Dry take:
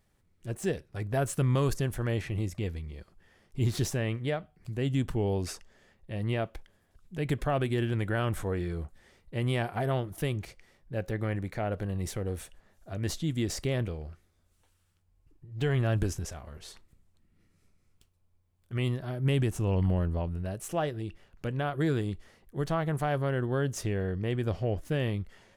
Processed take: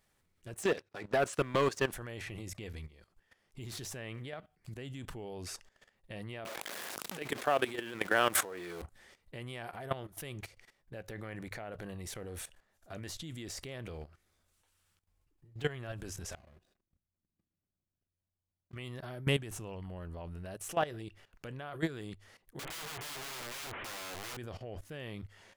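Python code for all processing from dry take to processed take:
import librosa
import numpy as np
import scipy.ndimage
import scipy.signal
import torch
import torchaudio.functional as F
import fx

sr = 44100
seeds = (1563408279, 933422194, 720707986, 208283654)

y = fx.chain(x, sr, fx.bandpass_edges(low_hz=230.0, high_hz=6000.0),
    fx.leveller(passes=2), at=(0.63, 1.93))
y = fx.chain(y, sr, fx.zero_step(step_db=-41.5),
    fx.highpass(hz=300.0, slope=12),
    fx.env_flatten(amount_pct=70), at=(6.45, 8.82))
y = fx.chain(y, sr, fx.median_filter(points=41),
    fx.notch_comb(f0_hz=450.0),
    fx.level_steps(step_db=12), at=(16.35, 18.76))
y = fx.chain(y, sr, fx.delta_mod(bps=16000, step_db=-31.0),
    fx.lowpass(hz=1500.0, slope=6),
    fx.overflow_wrap(gain_db=34.0), at=(22.59, 24.37))
y = fx.low_shelf(y, sr, hz=470.0, db=-9.5)
y = fx.hum_notches(y, sr, base_hz=50, count=2)
y = fx.level_steps(y, sr, step_db=16)
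y = y * 10.0 ** (5.0 / 20.0)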